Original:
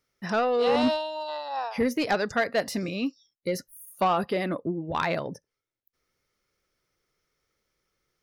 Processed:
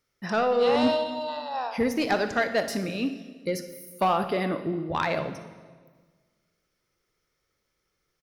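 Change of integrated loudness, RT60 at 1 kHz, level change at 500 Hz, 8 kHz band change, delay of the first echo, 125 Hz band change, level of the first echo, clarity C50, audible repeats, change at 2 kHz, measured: +0.5 dB, 1.4 s, +1.0 dB, +0.5 dB, 60 ms, +0.5 dB, -15.0 dB, 9.5 dB, 1, +0.5 dB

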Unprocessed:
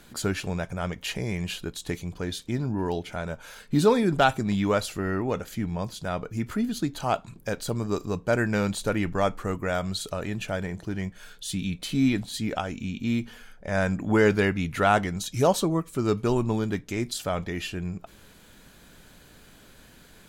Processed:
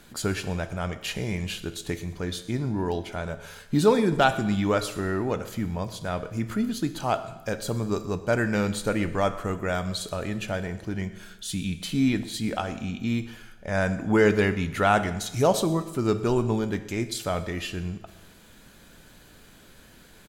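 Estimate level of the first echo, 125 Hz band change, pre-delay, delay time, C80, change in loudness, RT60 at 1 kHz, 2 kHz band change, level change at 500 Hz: -20.5 dB, +0.5 dB, 9 ms, 122 ms, 14.5 dB, +0.5 dB, 1.1 s, +0.5 dB, +0.5 dB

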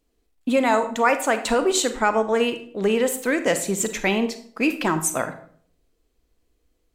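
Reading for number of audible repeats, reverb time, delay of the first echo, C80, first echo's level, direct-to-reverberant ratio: no echo, 0.55 s, no echo, 15.0 dB, no echo, 9.0 dB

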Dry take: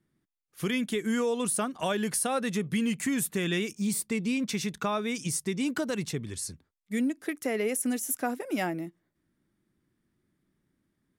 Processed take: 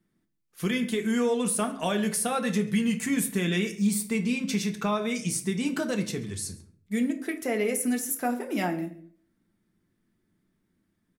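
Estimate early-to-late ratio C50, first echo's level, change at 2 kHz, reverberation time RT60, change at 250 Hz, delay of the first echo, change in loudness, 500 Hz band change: 12.5 dB, -22.5 dB, +1.5 dB, 0.50 s, +3.0 dB, 136 ms, +2.0 dB, +2.0 dB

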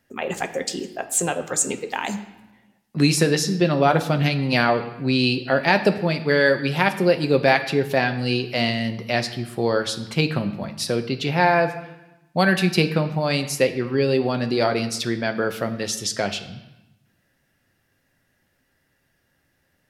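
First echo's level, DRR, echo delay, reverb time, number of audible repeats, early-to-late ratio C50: no echo, 7.0 dB, no echo, 0.95 s, no echo, 12.0 dB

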